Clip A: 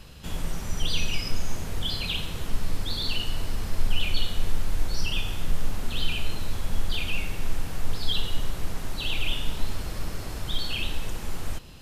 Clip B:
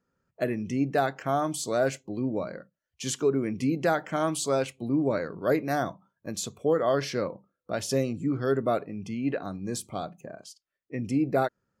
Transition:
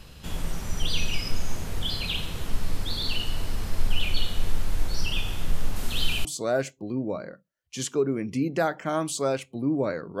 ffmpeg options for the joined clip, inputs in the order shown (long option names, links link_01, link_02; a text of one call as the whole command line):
ffmpeg -i cue0.wav -i cue1.wav -filter_complex "[0:a]asettb=1/sr,asplit=3[link_01][link_02][link_03];[link_01]atrim=end=5.764[link_04];[link_02]atrim=start=5.76:end=6.25,asetpts=PTS-STARTPTS,afade=type=in:duration=0.004:curve=qsin,afade=type=out:start_time=0.486:duration=0.004:curve=qsin,highshelf=frequency=3700:gain=7[link_05];[link_03]atrim=start=6.246[link_06];[link_04][link_05]acrossfade=duration=0.004:curve1=hsin:curve2=qsin[link_07];[link_07][link_06]acrossfade=duration=0.004:curve1=qsin:curve2=hsin,apad=whole_dur=10.2,atrim=end=10.2,atrim=end=6.252[link_08];[1:a]atrim=start=1.518:end=5.47[link_09];[link_08][link_09]acrossfade=duration=0.004:curve1=hsin:curve2=hsin" out.wav